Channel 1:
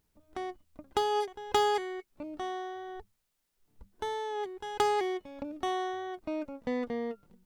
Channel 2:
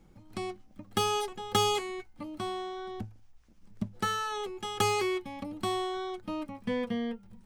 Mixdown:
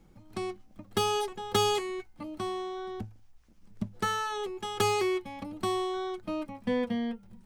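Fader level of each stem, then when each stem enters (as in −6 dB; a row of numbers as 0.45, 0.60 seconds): −6.5, 0.0 decibels; 0.00, 0.00 seconds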